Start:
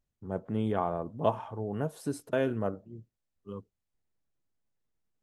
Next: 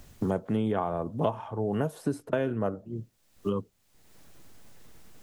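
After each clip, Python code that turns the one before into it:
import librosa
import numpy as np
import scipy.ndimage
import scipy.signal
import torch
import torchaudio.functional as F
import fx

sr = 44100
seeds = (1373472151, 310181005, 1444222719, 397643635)

y = fx.band_squash(x, sr, depth_pct=100)
y = y * librosa.db_to_amplitude(2.5)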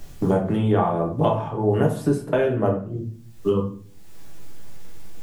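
y = fx.room_shoebox(x, sr, seeds[0], volume_m3=44.0, walls='mixed', distance_m=0.65)
y = y * librosa.db_to_amplitude(4.5)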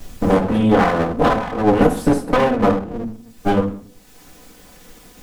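y = fx.lower_of_two(x, sr, delay_ms=4.0)
y = y * librosa.db_to_amplitude(7.0)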